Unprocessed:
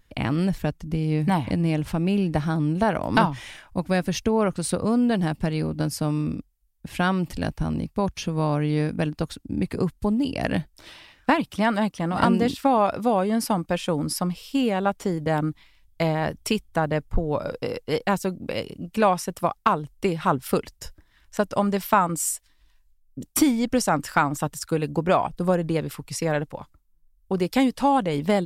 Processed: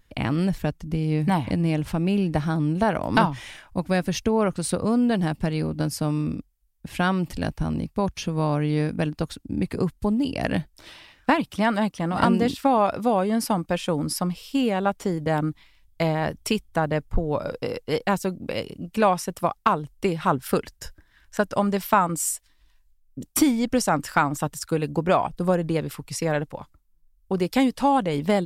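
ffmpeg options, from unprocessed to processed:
ffmpeg -i in.wav -filter_complex "[0:a]asettb=1/sr,asplit=3[link_01][link_02][link_03];[link_01]atrim=end=20.384[link_04];[link_02]atrim=start=20.38:end=21.54,asetpts=PTS-STARTPTS,afade=type=in:duration=0.004:curve=qsin,afade=type=out:start_time=1.156:duration=0.004:curve=qsin,equalizer=frequency=1600:width_type=o:width=0.25:gain=7.5[link_05];[link_03]atrim=start=21.536[link_06];[link_04][link_05]acrossfade=duration=0.004:curve1=hsin:curve2=qsin[link_07];[link_07][link_06]acrossfade=duration=0.004:curve1=qsin:curve2=hsin" out.wav

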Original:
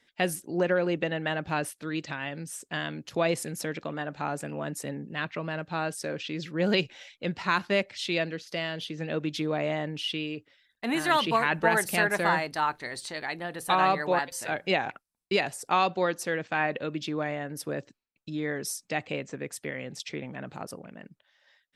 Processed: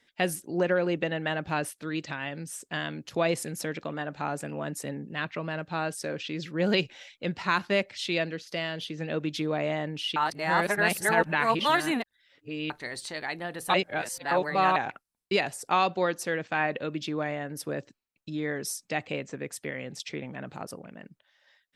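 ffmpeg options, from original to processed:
ffmpeg -i in.wav -filter_complex "[0:a]asplit=5[link_01][link_02][link_03][link_04][link_05];[link_01]atrim=end=10.162[link_06];[link_02]atrim=start=10.158:end=12.702,asetpts=PTS-STARTPTS,areverse[link_07];[link_03]atrim=start=12.698:end=13.742[link_08];[link_04]atrim=start=13.738:end=14.762,asetpts=PTS-STARTPTS,areverse[link_09];[link_05]atrim=start=14.758[link_10];[link_06][link_07]acrossfade=duration=0.004:curve1=hsin:curve2=hsin[link_11];[link_11][link_08]acrossfade=duration=0.004:curve1=hsin:curve2=hsin[link_12];[link_12][link_09]acrossfade=duration=0.004:curve1=hsin:curve2=hsin[link_13];[link_13][link_10]acrossfade=duration=0.004:curve1=hsin:curve2=hsin" out.wav

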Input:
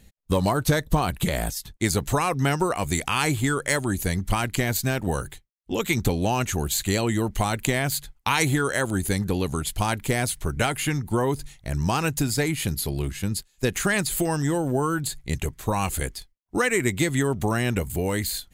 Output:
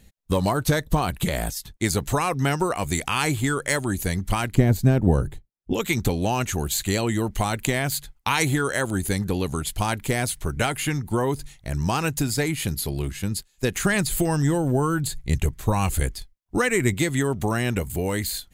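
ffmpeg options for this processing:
ffmpeg -i in.wav -filter_complex "[0:a]asettb=1/sr,asplit=3[link_01][link_02][link_03];[link_01]atrim=end=4.544[link_04];[link_02]atrim=start=4.54:end=5.73,asetpts=PTS-STARTPTS,afade=type=in:duration=0.004:curve=qsin,afade=type=out:start_time=1.186:duration=0.004:curve=qsin,tiltshelf=frequency=840:gain=9.5[link_05];[link_03]atrim=start=5.726[link_06];[link_04][link_05]acrossfade=duration=0.004:curve1=hsin:curve2=qsin[link_07];[link_07][link_06]acrossfade=duration=0.004:curve1=qsin:curve2=hsin,asettb=1/sr,asplit=3[link_08][link_09][link_10];[link_08]atrim=end=13.824[link_11];[link_09]atrim=start=13.82:end=16.94,asetpts=PTS-STARTPTS,afade=type=in:duration=0.004:curve=qsin,afade=type=out:start_time=3.116:duration=0.004:curve=qsin,lowshelf=frequency=150:gain=8.5[link_12];[link_10]atrim=start=16.936[link_13];[link_11][link_12]acrossfade=duration=0.004:curve1=hsin:curve2=qsin[link_14];[link_14][link_13]acrossfade=duration=0.004:curve1=qsin:curve2=hsin" out.wav

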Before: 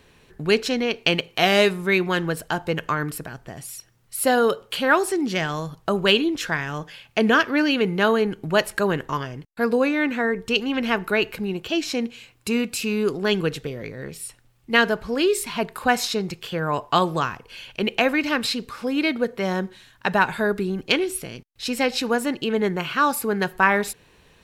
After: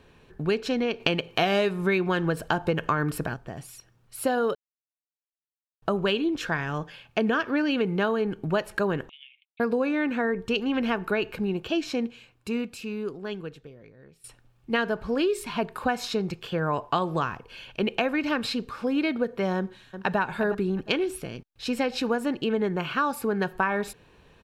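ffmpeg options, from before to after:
ffmpeg -i in.wav -filter_complex "[0:a]asettb=1/sr,asplit=3[link_01][link_02][link_03];[link_01]atrim=end=9.094[link_04];[link_02]atrim=start=9.09:end=9.6,asetpts=PTS-STARTPTS,afade=type=in:duration=0.004:curve=qsin,afade=type=out:start_time=0.506:duration=0.004:curve=qsin,asuperpass=centerf=2900:order=12:qfactor=1.8[link_05];[link_03]atrim=start=9.596[link_06];[link_04][link_05]acrossfade=duration=0.004:curve1=hsin:curve2=qsin[link_07];[link_07][link_06]acrossfade=duration=0.004:curve1=qsin:curve2=hsin,asplit=2[link_08][link_09];[link_09]afade=type=in:start_time=19.57:duration=0.01,afade=type=out:start_time=20.18:duration=0.01,aecho=0:1:360|720|1080:0.251189|0.0502377|0.0100475[link_10];[link_08][link_10]amix=inputs=2:normalize=0,asplit=6[link_11][link_12][link_13][link_14][link_15][link_16];[link_11]atrim=end=1.002[link_17];[link_12]atrim=start=0.998:end=3.342,asetpts=PTS-STARTPTS,volume=6dB[link_18];[link_13]atrim=start=3.338:end=4.55,asetpts=PTS-STARTPTS,afade=type=out:start_time=1.208:duration=0.004:curve=hsin[link_19];[link_14]atrim=start=4.55:end=5.82,asetpts=PTS-STARTPTS,volume=0[link_20];[link_15]atrim=start=5.82:end=14.24,asetpts=PTS-STARTPTS,afade=type=in:duration=0.004:curve=hsin,afade=type=out:start_time=5.92:duration=2.5:curve=qua:silence=0.133352[link_21];[link_16]atrim=start=14.24,asetpts=PTS-STARTPTS,afade=type=in:duration=0.004:curve=hsin:silence=0.133352[link_22];[link_17][link_18]acrossfade=duration=0.004:curve1=hsin:curve2=hsin[link_23];[link_19][link_20][link_21][link_22]concat=n=4:v=0:a=1[link_24];[link_23][link_24]acrossfade=duration=0.004:curve1=hsin:curve2=hsin,highshelf=frequency=3900:gain=-11.5,bandreject=frequency=2000:width=9.8,acompressor=threshold=-21dB:ratio=6" out.wav

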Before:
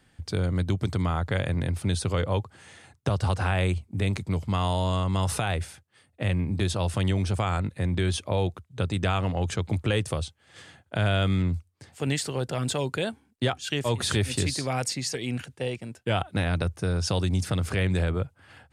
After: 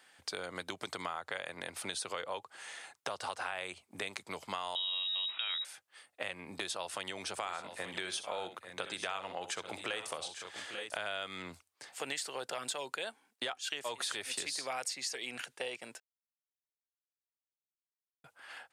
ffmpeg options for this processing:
ffmpeg -i in.wav -filter_complex "[0:a]asettb=1/sr,asplit=3[link_01][link_02][link_03];[link_01]atrim=end=4.754[link_04];[link_02]atrim=start=4.75:end=5.65,asetpts=PTS-STARTPTS,afade=type=in:duration=0.004:curve=qsin,afade=type=out:start_time=0.896:duration=0.004:curve=qsin,lowpass=frequency=3300:width_type=q:width=0.5098,lowpass=frequency=3300:width_type=q:width=0.6013,lowpass=frequency=3300:width_type=q:width=0.9,lowpass=frequency=3300:width_type=q:width=2.563,afreqshift=-3900[link_05];[link_03]atrim=start=5.646[link_06];[link_04][link_05]acrossfade=duration=0.004:curve1=hsin:curve2=qsin[link_07];[link_07][link_06]acrossfade=duration=0.004:curve1=qsin:curve2=hsin,asplit=3[link_08][link_09][link_10];[link_08]afade=type=out:start_time=7.37:duration=0.02[link_11];[link_09]aecho=1:1:63|845|878:0.224|0.158|0.168,afade=type=in:start_time=7.37:duration=0.02,afade=type=out:start_time=10.96:duration=0.02[link_12];[link_10]afade=type=in:start_time=10.96:duration=0.02[link_13];[link_11][link_12][link_13]amix=inputs=3:normalize=0,asplit=3[link_14][link_15][link_16];[link_14]atrim=end=16,asetpts=PTS-STARTPTS,afade=type=out:start_time=15.996:duration=0.004:curve=hsin[link_17];[link_15]atrim=start=16:end=18.24,asetpts=PTS-STARTPTS,volume=0[link_18];[link_16]atrim=start=18.24,asetpts=PTS-STARTPTS,afade=type=in:duration=0.004:curve=hsin[link_19];[link_17][link_18][link_19]concat=n=3:v=0:a=1,highpass=690,acompressor=threshold=-40dB:ratio=4,volume=3.5dB" out.wav

